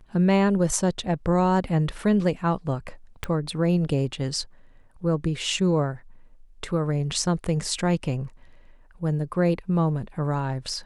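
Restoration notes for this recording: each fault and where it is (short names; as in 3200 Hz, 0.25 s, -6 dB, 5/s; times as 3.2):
3.24 pop -16 dBFS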